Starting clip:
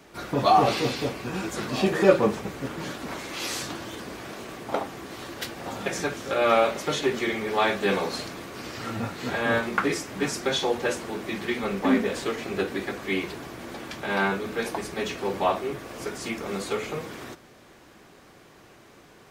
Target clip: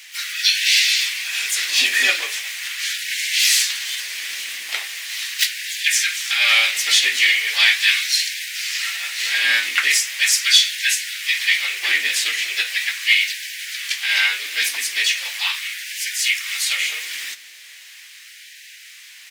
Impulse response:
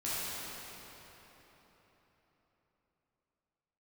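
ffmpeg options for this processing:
-filter_complex "[0:a]firequalizer=gain_entry='entry(120,0);entry(270,-27);entry(1200,-12);entry(1900,12)':delay=0.05:min_phase=1,asplit=2[a][b];[b]asetrate=58866,aresample=44100,atempo=0.749154,volume=-6dB[c];[a][c]amix=inputs=2:normalize=0,asplit=2[d][e];[e]acontrast=81,volume=-1.5dB[f];[d][f]amix=inputs=2:normalize=0,afftfilt=real='re*gte(b*sr/1024,240*pow(1500/240,0.5+0.5*sin(2*PI*0.39*pts/sr)))':imag='im*gte(b*sr/1024,240*pow(1500/240,0.5+0.5*sin(2*PI*0.39*pts/sr)))':win_size=1024:overlap=0.75,volume=-4.5dB"

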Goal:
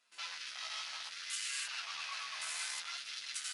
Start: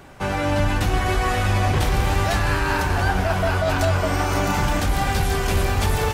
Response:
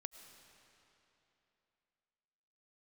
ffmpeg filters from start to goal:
-filter_complex "[0:a]adynamicsmooth=sensitivity=7:basefreq=5.7k,aeval=exprs='(tanh(28.2*val(0)+0.6)-tanh(0.6))/28.2':c=same,aderivative,bandreject=f=50:t=h:w=6,bandreject=f=100:t=h:w=6,bandreject=f=150:t=h:w=6,bandreject=f=200:t=h:w=6,aecho=1:1:209:0.168,asplit=2[a][b];[1:a]atrim=start_sample=2205,adelay=40[c];[b][c]afir=irnorm=-1:irlink=0,volume=-1.5dB[d];[a][d]amix=inputs=2:normalize=0,asetrate=76440,aresample=44100,asplit=2[e][f];[f]aecho=0:1:219:0.211[g];[e][g]amix=inputs=2:normalize=0,afwtdn=0.00355,afftfilt=real='re*between(b*sr/4096,150,11000)':imag='im*between(b*sr/4096,150,11000)':win_size=4096:overlap=0.75,flanger=delay=7.8:depth=9.5:regen=2:speed=0.61:shape=sinusoidal,volume=9dB"

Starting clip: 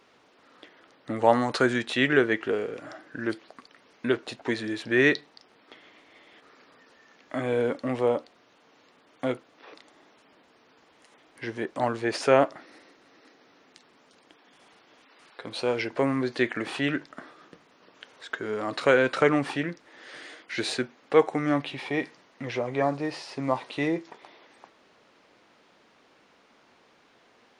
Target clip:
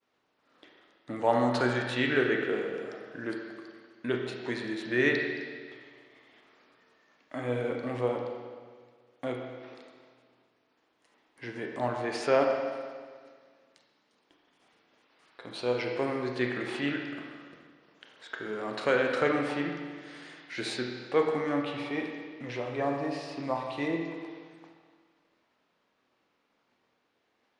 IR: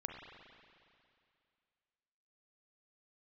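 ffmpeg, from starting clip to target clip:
-filter_complex "[0:a]agate=range=-33dB:threshold=-52dB:ratio=3:detection=peak[a];[1:a]atrim=start_sample=2205,asetrate=61740,aresample=44100[b];[a][b]afir=irnorm=-1:irlink=0"

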